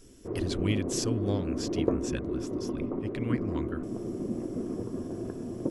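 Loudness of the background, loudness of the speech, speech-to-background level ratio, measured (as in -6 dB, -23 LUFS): -33.5 LUFS, -35.5 LUFS, -2.0 dB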